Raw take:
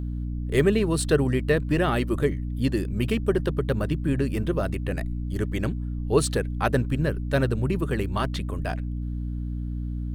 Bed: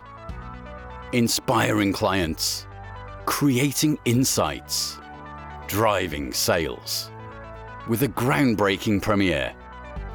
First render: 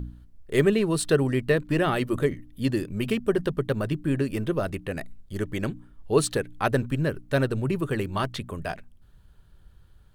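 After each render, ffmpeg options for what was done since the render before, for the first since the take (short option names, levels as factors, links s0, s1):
-af "bandreject=f=60:t=h:w=4,bandreject=f=120:t=h:w=4,bandreject=f=180:t=h:w=4,bandreject=f=240:t=h:w=4,bandreject=f=300:t=h:w=4"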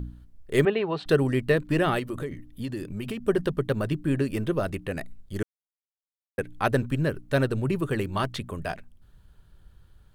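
-filter_complex "[0:a]asettb=1/sr,asplit=3[s0][s1][s2];[s0]atrim=end=0.654[s3];[s1]atrim=start=0.65:end=1.06,asetpts=PTS-STARTPTS,afade=t=in:d=0.004:c=qsin,afade=t=out:st=0.406:d=0.004:c=qsin,highpass=200,equalizer=f=210:t=q:w=4:g=-7,equalizer=f=310:t=q:w=4:g=-7,equalizer=f=790:t=q:w=4:g=10,lowpass=f=3500:w=0.5412,lowpass=f=3500:w=1.3066[s4];[s2]atrim=start=1.056[s5];[s3][s4]acrossfade=d=0.004:c1=hsin:c2=qsin[s6];[s6][s5]acrossfade=d=0.004:c1=qsin:c2=hsin,asettb=1/sr,asplit=3[s7][s8][s9];[s7]atrim=end=1.994[s10];[s8]atrim=start=1.99:end=3.27,asetpts=PTS-STARTPTS,afade=t=in:d=0.004:c=qsin,afade=t=out:st=1.276:d=0.004:c=qsin,acompressor=threshold=0.0355:ratio=4:attack=3.2:release=140:knee=1:detection=peak[s11];[s9]atrim=start=3.266[s12];[s10][s11]acrossfade=d=0.004:c1=hsin:c2=qsin[s13];[s13][s12]acrossfade=d=0.004:c1=qsin:c2=hsin,asplit=3[s14][s15][s16];[s14]atrim=end=5.43,asetpts=PTS-STARTPTS,afade=t=out:st=5.426:d=0.004:c=hsin[s17];[s15]atrim=start=5.43:end=6.38,asetpts=PTS-STARTPTS,volume=0[s18];[s16]atrim=start=6.38,asetpts=PTS-STARTPTS,afade=t=in:d=0.004:c=hsin[s19];[s17][s18][s19]concat=n=3:v=0:a=1"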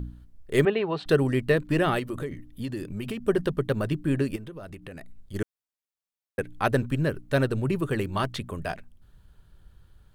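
-filter_complex "[0:a]asplit=3[s0][s1][s2];[s0]afade=t=out:st=4.35:d=0.02[s3];[s1]acompressor=threshold=0.0126:ratio=5:attack=3.2:release=140:knee=1:detection=peak,afade=t=in:st=4.35:d=0.02,afade=t=out:st=5.33:d=0.02[s4];[s2]afade=t=in:st=5.33:d=0.02[s5];[s3][s4][s5]amix=inputs=3:normalize=0"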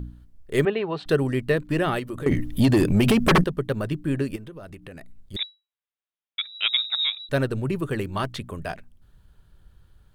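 -filter_complex "[0:a]asettb=1/sr,asplit=3[s0][s1][s2];[s0]atrim=end=2.264[s3];[s1]atrim=start=2.26:end=3.44,asetpts=PTS-STARTPTS,afade=t=in:d=0.004:c=qsin,afade=t=out:st=1.176:d=0.004:c=qsin,aeval=exprs='0.237*sin(PI/2*4.47*val(0)/0.237)':c=same[s4];[s2]atrim=start=3.436[s5];[s3][s4]acrossfade=d=0.004:c1=hsin:c2=qsin[s6];[s6][s5]acrossfade=d=0.004:c1=qsin:c2=hsin,asettb=1/sr,asplit=3[s7][s8][s9];[s7]atrim=end=5.364[s10];[s8]atrim=start=5.36:end=7.29,asetpts=PTS-STARTPTS,afade=t=in:d=0.004:c=qsin,afade=t=out:st=1.926:d=0.004:c=qsin,lowpass=f=3300:t=q:w=0.5098,lowpass=f=3300:t=q:w=0.6013,lowpass=f=3300:t=q:w=0.9,lowpass=f=3300:t=q:w=2.563,afreqshift=-3900[s11];[s9]atrim=start=7.286[s12];[s10][s11]acrossfade=d=0.004:c1=hsin:c2=qsin[s13];[s13][s12]acrossfade=d=0.004:c1=qsin:c2=hsin"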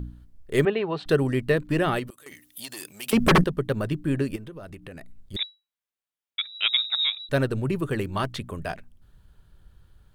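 -filter_complex "[0:a]asettb=1/sr,asplit=3[s0][s1][s2];[s0]atrim=end=2.104[s3];[s1]atrim=start=2.1:end=3.13,asetpts=PTS-STARTPTS,afade=t=in:d=0.004:c=qsin,afade=t=out:st=1.026:d=0.004:c=qsin,aderivative[s4];[s2]atrim=start=3.126[s5];[s3][s4]acrossfade=d=0.004:c1=hsin:c2=qsin[s6];[s6][s5]acrossfade=d=0.004:c1=qsin:c2=hsin"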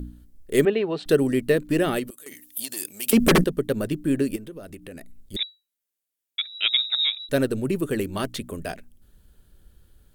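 -af "equalizer=f=125:t=o:w=1:g=-6,equalizer=f=250:t=o:w=1:g=5,equalizer=f=500:t=o:w=1:g=3,equalizer=f=1000:t=o:w=1:g=-6,equalizer=f=8000:t=o:w=1:g=3,equalizer=f=16000:t=o:w=1:g=12"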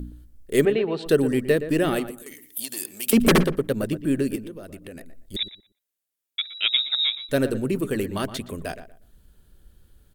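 -filter_complex "[0:a]asplit=2[s0][s1];[s1]adelay=119,lowpass=f=1800:p=1,volume=0.266,asplit=2[s2][s3];[s3]adelay=119,lowpass=f=1800:p=1,volume=0.23,asplit=2[s4][s5];[s5]adelay=119,lowpass=f=1800:p=1,volume=0.23[s6];[s0][s2][s4][s6]amix=inputs=4:normalize=0"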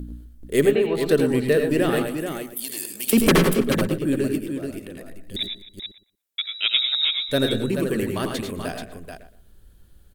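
-af "aecho=1:1:87|104|258|432:0.335|0.422|0.112|0.447"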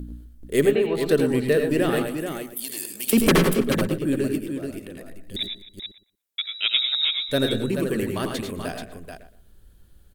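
-af "volume=0.891"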